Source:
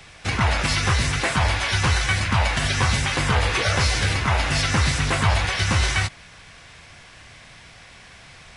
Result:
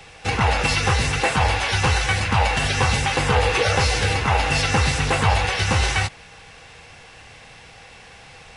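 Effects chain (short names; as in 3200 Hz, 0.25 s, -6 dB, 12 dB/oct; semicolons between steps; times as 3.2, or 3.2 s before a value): small resonant body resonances 480/800/2700 Hz, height 11 dB, ringing for 45 ms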